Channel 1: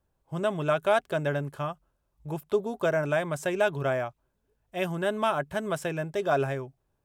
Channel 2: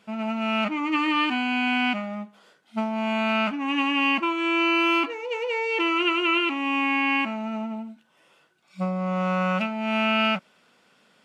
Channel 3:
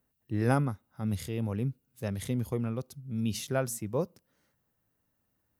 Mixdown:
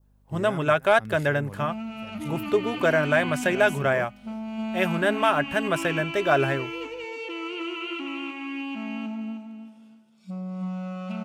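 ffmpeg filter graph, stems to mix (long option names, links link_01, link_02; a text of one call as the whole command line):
ffmpeg -i stem1.wav -i stem2.wav -i stem3.wav -filter_complex "[0:a]acontrast=76,aeval=exprs='val(0)+0.00158*(sin(2*PI*50*n/s)+sin(2*PI*2*50*n/s)/2+sin(2*PI*3*50*n/s)/3+sin(2*PI*4*50*n/s)/4+sin(2*PI*5*50*n/s)/5)':channel_layout=same,volume=-3.5dB[link_01];[1:a]equalizer=frequency=125:width_type=o:width=1:gain=8,equalizer=frequency=500:width_type=o:width=1:gain=-4,equalizer=frequency=1000:width_type=o:width=1:gain=-6,equalizer=frequency=2000:width_type=o:width=1:gain=-10,adelay=1500,volume=-4dB,asplit=2[link_02][link_03];[link_03]volume=-7dB[link_04];[2:a]volume=-7dB,asplit=2[link_05][link_06];[link_06]volume=-23.5dB[link_07];[link_02][link_05]amix=inputs=2:normalize=0,alimiter=level_in=4dB:limit=-24dB:level=0:latency=1:release=38,volume=-4dB,volume=0dB[link_08];[link_04][link_07]amix=inputs=2:normalize=0,aecho=0:1:313|626|939|1252:1|0.3|0.09|0.027[link_09];[link_01][link_08][link_09]amix=inputs=3:normalize=0,adynamicequalizer=threshold=0.00794:dfrequency=1900:dqfactor=1.4:tfrequency=1900:tqfactor=1.4:attack=5:release=100:ratio=0.375:range=3.5:mode=boostabove:tftype=bell" out.wav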